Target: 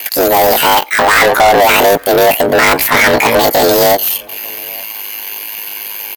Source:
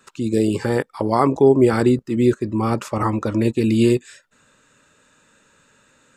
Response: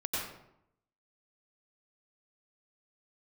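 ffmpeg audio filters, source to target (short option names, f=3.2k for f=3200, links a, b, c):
-filter_complex "[0:a]acrossover=split=320[a][b];[a]acompressor=threshold=-22dB:ratio=2.5[c];[c][b]amix=inputs=2:normalize=0,aeval=exprs='val(0)*sin(2*PI*30*n/s)':c=same,aexciter=amount=6.7:drive=5.3:freq=6.3k,asplit=2[d][e];[e]highpass=f=720:p=1,volume=37dB,asoftclip=type=tanh:threshold=-3.5dB[f];[d][f]amix=inputs=2:normalize=0,lowpass=f=5.3k:p=1,volume=-6dB,asplit=2[g][h];[h]adelay=874.6,volume=-26dB,highshelf=f=4k:g=-19.7[i];[g][i]amix=inputs=2:normalize=0,asplit=2[j][k];[1:a]atrim=start_sample=2205,atrim=end_sample=4410[l];[k][l]afir=irnorm=-1:irlink=0,volume=-27.5dB[m];[j][m]amix=inputs=2:normalize=0,asetrate=76340,aresample=44100,atempo=0.577676,volume=3dB"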